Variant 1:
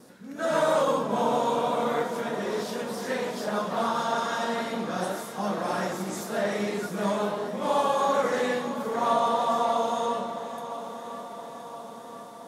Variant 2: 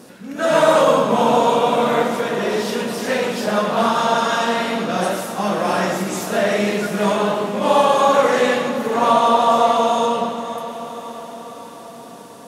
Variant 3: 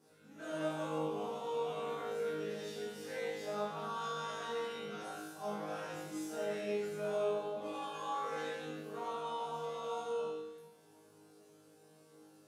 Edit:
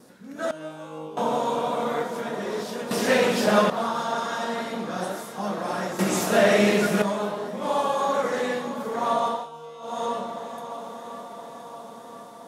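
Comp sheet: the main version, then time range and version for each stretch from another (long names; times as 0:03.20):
1
0:00.51–0:01.17: punch in from 3
0:02.91–0:03.70: punch in from 2
0:05.99–0:07.02: punch in from 2
0:09.38–0:09.91: punch in from 3, crossfade 0.24 s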